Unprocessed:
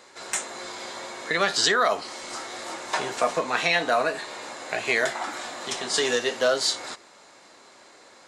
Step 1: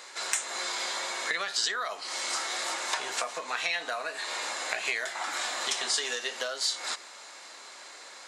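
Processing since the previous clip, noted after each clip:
downward compressor 12 to 1, threshold −32 dBFS, peak gain reduction 15.5 dB
high-pass filter 1,400 Hz 6 dB per octave
level +7.5 dB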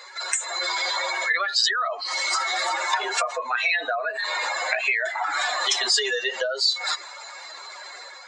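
expanding power law on the bin magnitudes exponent 2.3
automatic gain control gain up to 4.5 dB
level +3.5 dB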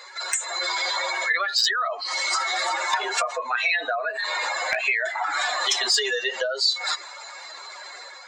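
hard clipping −11.5 dBFS, distortion −30 dB

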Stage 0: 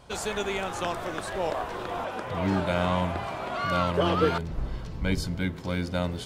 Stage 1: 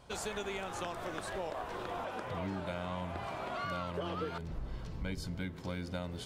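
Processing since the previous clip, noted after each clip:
downward compressor 6 to 1, threshold −29 dBFS, peak gain reduction 11 dB
level −5.5 dB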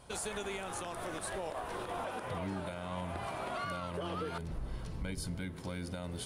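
parametric band 9,700 Hz +14.5 dB 0.34 octaves
brickwall limiter −30 dBFS, peak gain reduction 6.5 dB
level +1 dB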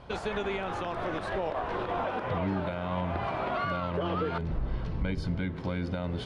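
high-frequency loss of the air 240 metres
level +8.5 dB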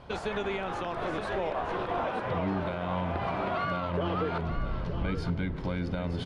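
mains-hum notches 50/100 Hz
single-tap delay 920 ms −9.5 dB

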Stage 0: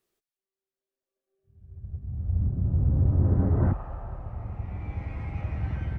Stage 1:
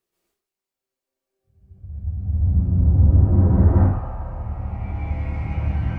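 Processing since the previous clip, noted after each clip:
dense smooth reverb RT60 0.54 s, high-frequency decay 0.75×, pre-delay 115 ms, DRR −8.5 dB
level −2.5 dB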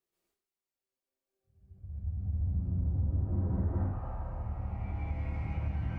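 downward compressor 3 to 1, threshold −22 dBFS, peak gain reduction 9.5 dB
level −8 dB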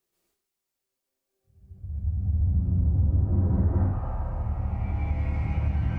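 bass and treble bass +2 dB, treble +3 dB
level +6 dB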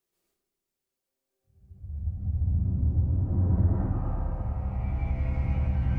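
feedback echo with a low-pass in the loop 110 ms, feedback 78%, low-pass 800 Hz, level −5.5 dB
level −3 dB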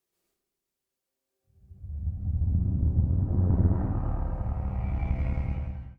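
fade-out on the ending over 0.72 s
harmonic generator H 2 −8 dB, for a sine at −14 dBFS

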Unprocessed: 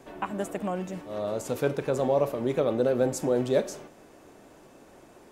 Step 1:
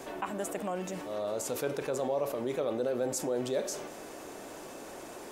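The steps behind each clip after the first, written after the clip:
bass and treble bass −8 dB, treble +4 dB
envelope flattener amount 50%
level −8 dB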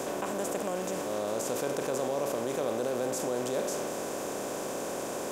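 compressor on every frequency bin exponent 0.4
level −4 dB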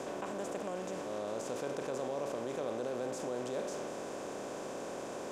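high-frequency loss of the air 59 metres
level −6 dB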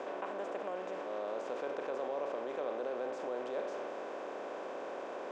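band-pass filter 400–2,700 Hz
level +1.5 dB

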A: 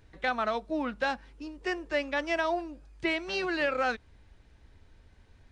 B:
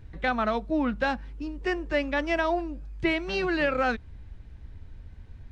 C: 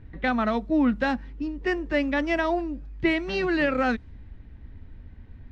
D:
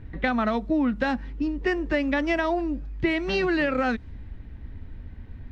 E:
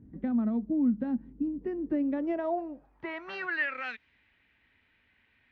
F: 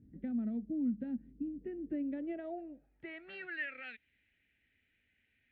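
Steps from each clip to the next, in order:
bass and treble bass +11 dB, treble −5 dB; level +2.5 dB
hollow resonant body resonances 250/1,900 Hz, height 7 dB, ringing for 25 ms; low-pass that shuts in the quiet parts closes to 2,900 Hz, open at −19 dBFS
downward compressor, threshold −25 dBFS, peak gain reduction 7 dB; level +4.5 dB
band-pass filter sweep 230 Hz → 2,500 Hz, 0:01.74–0:03.90
phaser with its sweep stopped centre 2,500 Hz, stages 4; level −7 dB

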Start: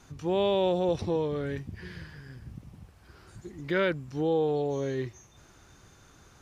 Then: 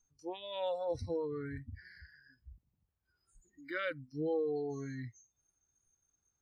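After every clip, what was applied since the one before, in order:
low-shelf EQ 82 Hz +7 dB
noise reduction from a noise print of the clip's start 27 dB
level −7 dB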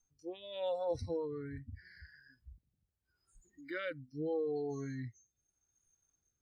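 rotating-speaker cabinet horn 0.8 Hz
level +1 dB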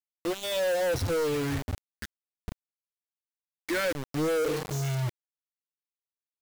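healed spectral selection 0:04.46–0:05.16, 220–2,000 Hz both
centre clipping without the shift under −47 dBFS
leveller curve on the samples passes 5
level +1.5 dB

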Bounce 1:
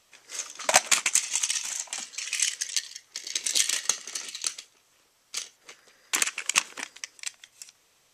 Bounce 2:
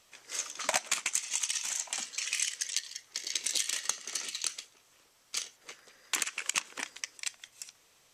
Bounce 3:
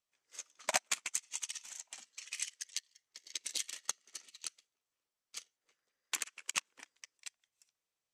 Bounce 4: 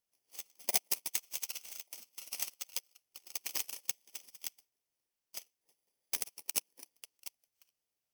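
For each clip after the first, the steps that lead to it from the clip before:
downward compressor 3 to 1, threshold −29 dBFS, peak gain reduction 12 dB
expander for the loud parts 2.5 to 1, over −43 dBFS; level −1 dB
samples in bit-reversed order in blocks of 32 samples; level +1.5 dB

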